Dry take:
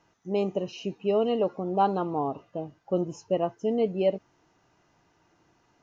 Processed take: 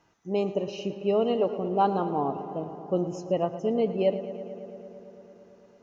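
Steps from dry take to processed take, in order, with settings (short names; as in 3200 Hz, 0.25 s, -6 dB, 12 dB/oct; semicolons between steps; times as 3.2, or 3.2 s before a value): on a send: darkening echo 0.112 s, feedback 83%, low-pass 4400 Hz, level -13.5 dB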